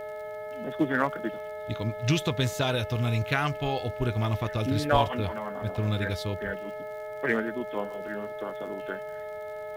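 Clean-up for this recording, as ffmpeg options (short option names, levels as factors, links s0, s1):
-af "adeclick=t=4,bandreject=f=429.3:t=h:w=4,bandreject=f=858.6:t=h:w=4,bandreject=f=1287.9:t=h:w=4,bandreject=f=1717.2:t=h:w=4,bandreject=f=2146.5:t=h:w=4,bandreject=f=620:w=30"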